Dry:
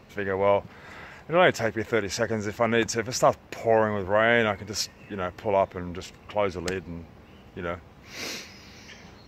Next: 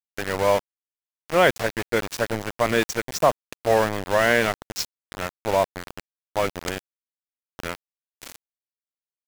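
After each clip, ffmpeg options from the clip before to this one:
ffmpeg -i in.wav -af "aeval=exprs='val(0)+0.00398*(sin(2*PI*60*n/s)+sin(2*PI*2*60*n/s)/2+sin(2*PI*3*60*n/s)/3+sin(2*PI*4*60*n/s)/4+sin(2*PI*5*60*n/s)/5)':channel_layout=same,aeval=exprs='val(0)*gte(abs(val(0)),0.0531)':channel_layout=same,volume=2dB" out.wav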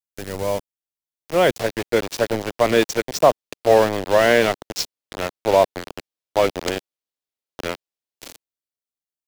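ffmpeg -i in.wav -filter_complex "[0:a]equalizer=frequency=1500:width=0.51:gain=-11,acrossover=split=320|4800[link_01][link_02][link_03];[link_02]dynaudnorm=framelen=430:gausssize=7:maxgain=12dB[link_04];[link_01][link_04][link_03]amix=inputs=3:normalize=0,volume=1dB" out.wav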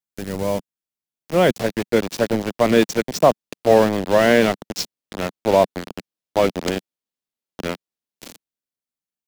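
ffmpeg -i in.wav -af "equalizer=frequency=200:width_type=o:width=1.2:gain=9,volume=-1dB" out.wav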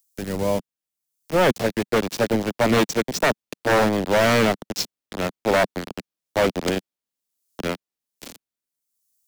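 ffmpeg -i in.wav -filter_complex "[0:a]acrossover=split=230|1700|5400[link_01][link_02][link_03][link_04];[link_04]acompressor=mode=upward:threshold=-50dB:ratio=2.5[link_05];[link_01][link_02][link_03][link_05]amix=inputs=4:normalize=0,aeval=exprs='0.282*(abs(mod(val(0)/0.282+3,4)-2)-1)':channel_layout=same" out.wav

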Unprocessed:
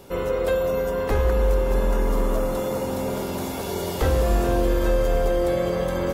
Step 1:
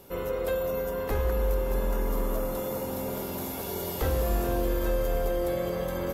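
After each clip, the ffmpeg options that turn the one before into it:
ffmpeg -i in.wav -af "equalizer=frequency=13000:width=2.2:gain=14,volume=-6.5dB" out.wav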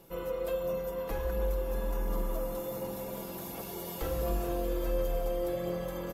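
ffmpeg -i in.wav -af "aecho=1:1:6:0.58,aphaser=in_gain=1:out_gain=1:delay=4.3:decay=0.25:speed=1.4:type=sinusoidal,volume=-7.5dB" out.wav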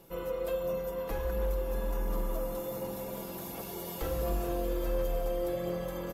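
ffmpeg -i in.wav -af "volume=24.5dB,asoftclip=hard,volume=-24.5dB" out.wav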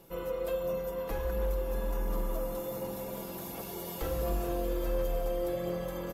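ffmpeg -i in.wav -af anull out.wav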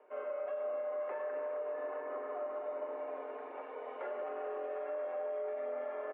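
ffmpeg -i in.wav -af "aecho=1:1:40.82|265.3:0.282|0.355,highpass=frequency=300:width_type=q:width=0.5412,highpass=frequency=300:width_type=q:width=1.307,lowpass=frequency=2200:width_type=q:width=0.5176,lowpass=frequency=2200:width_type=q:width=0.7071,lowpass=frequency=2200:width_type=q:width=1.932,afreqshift=76,alimiter=level_in=5.5dB:limit=-24dB:level=0:latency=1:release=59,volume=-5.5dB,volume=-2dB" out.wav

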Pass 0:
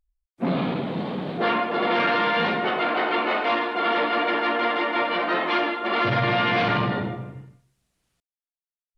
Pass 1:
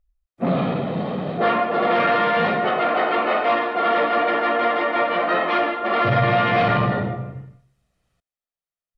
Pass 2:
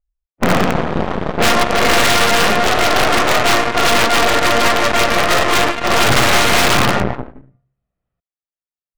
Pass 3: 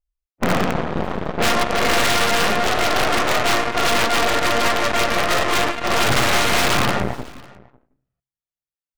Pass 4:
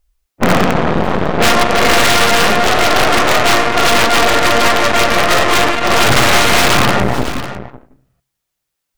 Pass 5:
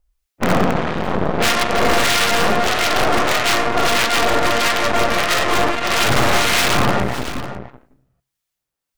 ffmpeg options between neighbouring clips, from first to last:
ffmpeg -i in.wav -af "highshelf=frequency=3000:gain=-10.5,aecho=1:1:1.6:0.38,volume=4dB" out.wav
ffmpeg -i in.wav -af "aeval=exprs='(mod(4.47*val(0)+1,2)-1)/4.47':channel_layout=same,adynamicsmooth=sensitivity=5.5:basefreq=2000,aeval=exprs='0.224*(cos(1*acos(clip(val(0)/0.224,-1,1)))-cos(1*PI/2))+0.0794*(cos(4*acos(clip(val(0)/0.224,-1,1)))-cos(4*PI/2))+0.0398*(cos(7*acos(clip(val(0)/0.224,-1,1)))-cos(7*PI/2))':channel_layout=same,volume=5dB" out.wav
ffmpeg -i in.wav -af "aecho=1:1:550:0.0668,volume=-5dB" out.wav
ffmpeg -i in.wav -af "alimiter=level_in=19.5dB:limit=-1dB:release=50:level=0:latency=1,volume=-1dB" out.wav
ffmpeg -i in.wav -filter_complex "[0:a]acrossover=split=1400[link_01][link_02];[link_01]aeval=exprs='val(0)*(1-0.5/2+0.5/2*cos(2*PI*1.6*n/s))':channel_layout=same[link_03];[link_02]aeval=exprs='val(0)*(1-0.5/2-0.5/2*cos(2*PI*1.6*n/s))':channel_layout=same[link_04];[link_03][link_04]amix=inputs=2:normalize=0,volume=-3dB" out.wav

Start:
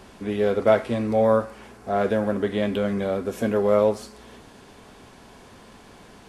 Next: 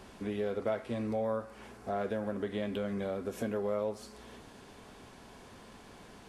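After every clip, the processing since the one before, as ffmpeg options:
ffmpeg -i in.wav -af "acompressor=threshold=-29dB:ratio=2.5,volume=-5dB" out.wav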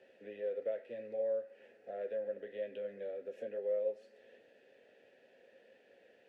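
ffmpeg -i in.wav -filter_complex "[0:a]acrossover=split=110|1100|4100[link_01][link_02][link_03][link_04];[link_01]aeval=exprs='val(0)*gte(abs(val(0)),0.00141)':channel_layout=same[link_05];[link_05][link_02][link_03][link_04]amix=inputs=4:normalize=0,flanger=delay=7.7:depth=1.4:regen=-63:speed=1.9:shape=sinusoidal,asplit=3[link_06][link_07][link_08];[link_06]bandpass=frequency=530:width_type=q:width=8,volume=0dB[link_09];[link_07]bandpass=frequency=1840:width_type=q:width=8,volume=-6dB[link_10];[link_08]bandpass=frequency=2480:width_type=q:width=8,volume=-9dB[link_11];[link_09][link_10][link_11]amix=inputs=3:normalize=0,volume=5.5dB" out.wav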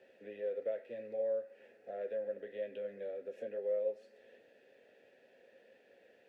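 ffmpeg -i in.wav -af "bandreject=frequency=3000:width=22" out.wav

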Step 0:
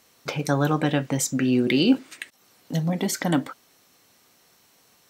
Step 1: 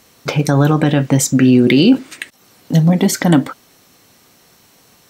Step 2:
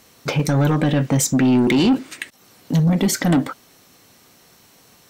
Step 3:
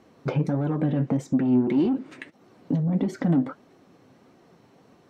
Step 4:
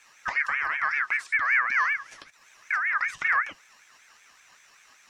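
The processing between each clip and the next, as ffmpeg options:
ffmpeg -i in.wav -af "lowshelf=frequency=300:gain=6.5,alimiter=level_in=9.5dB:limit=-1dB:release=50:level=0:latency=1,volume=-1dB" out.wav
ffmpeg -i in.wav -af "asoftclip=type=tanh:threshold=-9.5dB,volume=-1.5dB" out.wav
ffmpeg -i in.wav -af "acompressor=threshold=-23dB:ratio=6,bandpass=frequency=280:width_type=q:width=0.52:csg=0,flanger=delay=2.6:depth=5.3:regen=61:speed=1.6:shape=sinusoidal,volume=6.5dB" out.wav
ffmpeg -i in.wav -filter_complex "[0:a]acrossover=split=2500[link_01][link_02];[link_02]acompressor=threshold=-58dB:ratio=4:attack=1:release=60[link_03];[link_01][link_03]amix=inputs=2:normalize=0,highshelf=frequency=2900:width_type=q:width=3:gain=12,aeval=exprs='val(0)*sin(2*PI*1700*n/s+1700*0.2/5.2*sin(2*PI*5.2*n/s))':channel_layout=same" out.wav

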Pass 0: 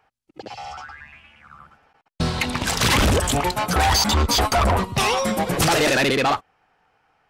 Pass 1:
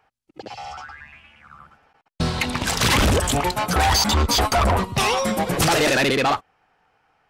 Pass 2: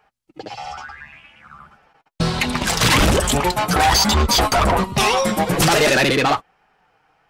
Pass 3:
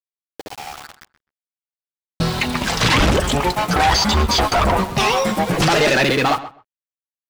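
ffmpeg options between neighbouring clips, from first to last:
ffmpeg -i in.wav -af anull out.wav
ffmpeg -i in.wav -af "flanger=delay=4.8:depth=1.8:regen=-40:speed=1.2:shape=sinusoidal,volume=7dB" out.wav
ffmpeg -i in.wav -filter_complex "[0:a]acrossover=split=6500[link_01][link_02];[link_02]acompressor=threshold=-37dB:ratio=4:attack=1:release=60[link_03];[link_01][link_03]amix=inputs=2:normalize=0,aeval=exprs='val(0)*gte(abs(val(0)),0.0335)':channel_layout=same,asplit=2[link_04][link_05];[link_05]adelay=129,lowpass=frequency=2300:poles=1,volume=-14dB,asplit=2[link_06][link_07];[link_07]adelay=129,lowpass=frequency=2300:poles=1,volume=0.16[link_08];[link_04][link_06][link_08]amix=inputs=3:normalize=0" out.wav

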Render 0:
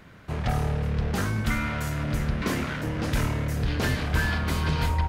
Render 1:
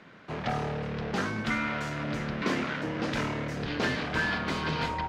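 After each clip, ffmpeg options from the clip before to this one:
ffmpeg -i in.wav -filter_complex "[0:a]acrossover=split=160 6200:gain=0.1 1 0.0708[link_01][link_02][link_03];[link_01][link_02][link_03]amix=inputs=3:normalize=0" out.wav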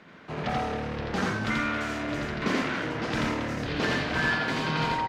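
ffmpeg -i in.wav -af "aecho=1:1:84.55|274.1:0.891|0.282" out.wav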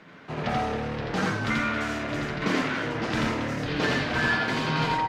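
ffmpeg -i in.wav -af "flanger=delay=6.2:depth=3.3:regen=-47:speed=0.8:shape=triangular,volume=5.5dB" out.wav

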